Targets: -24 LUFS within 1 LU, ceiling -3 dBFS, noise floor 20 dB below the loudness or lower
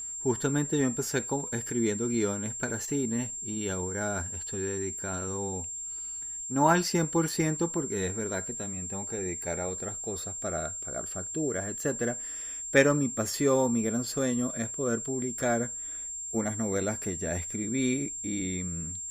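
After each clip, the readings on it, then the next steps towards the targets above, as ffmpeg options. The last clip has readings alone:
steady tone 7.4 kHz; tone level -35 dBFS; loudness -30.0 LUFS; peak level -6.0 dBFS; loudness target -24.0 LUFS
-> -af "bandreject=f=7400:w=30"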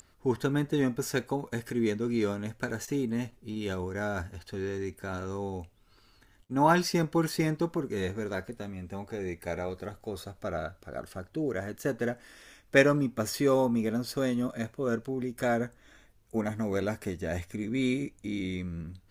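steady tone not found; loudness -31.0 LUFS; peak level -6.0 dBFS; loudness target -24.0 LUFS
-> -af "volume=2.24,alimiter=limit=0.708:level=0:latency=1"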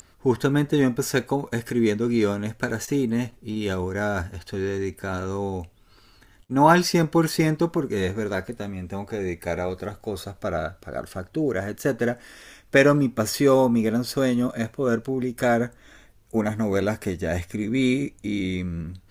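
loudness -24.5 LUFS; peak level -3.0 dBFS; noise floor -55 dBFS

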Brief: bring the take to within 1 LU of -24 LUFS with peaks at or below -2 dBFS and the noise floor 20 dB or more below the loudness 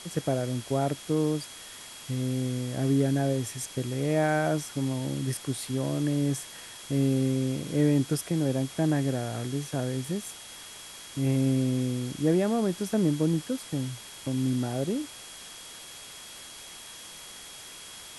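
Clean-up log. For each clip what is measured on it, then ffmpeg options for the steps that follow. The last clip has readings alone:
steady tone 3.3 kHz; tone level -49 dBFS; noise floor -45 dBFS; noise floor target -49 dBFS; loudness -28.5 LUFS; peak level -13.0 dBFS; loudness target -24.0 LUFS
-> -af "bandreject=f=3300:w=30"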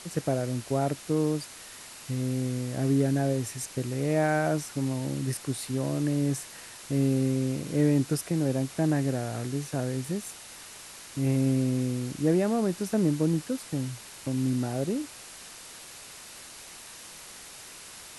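steady tone not found; noise floor -46 dBFS; noise floor target -49 dBFS
-> -af "afftdn=nr=6:nf=-46"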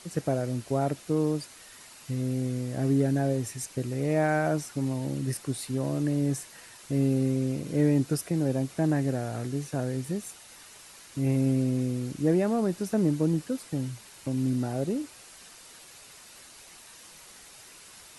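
noise floor -50 dBFS; loudness -28.5 LUFS; peak level -13.0 dBFS; loudness target -24.0 LUFS
-> -af "volume=1.68"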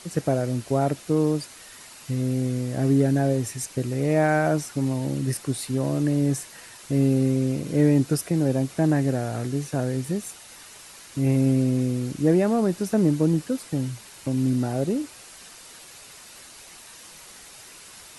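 loudness -24.0 LUFS; peak level -8.5 dBFS; noise floor -46 dBFS

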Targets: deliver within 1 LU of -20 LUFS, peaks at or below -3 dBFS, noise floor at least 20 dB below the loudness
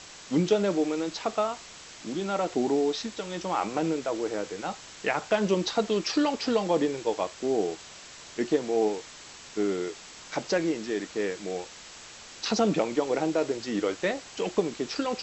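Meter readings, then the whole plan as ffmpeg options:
noise floor -47 dBFS; noise floor target -49 dBFS; loudness -28.5 LUFS; peak level -10.5 dBFS; loudness target -20.0 LUFS
-> -af "afftdn=nr=6:nf=-47"
-af "volume=2.66,alimiter=limit=0.708:level=0:latency=1"

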